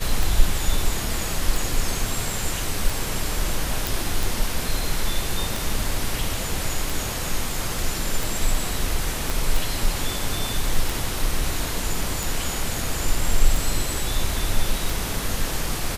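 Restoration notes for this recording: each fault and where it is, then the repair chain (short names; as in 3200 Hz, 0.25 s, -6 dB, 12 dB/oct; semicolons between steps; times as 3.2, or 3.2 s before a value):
tick 45 rpm
3.87 pop
9.3 pop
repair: de-click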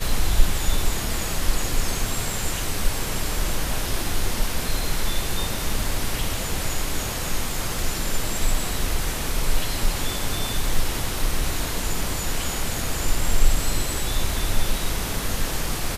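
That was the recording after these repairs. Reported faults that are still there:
9.3 pop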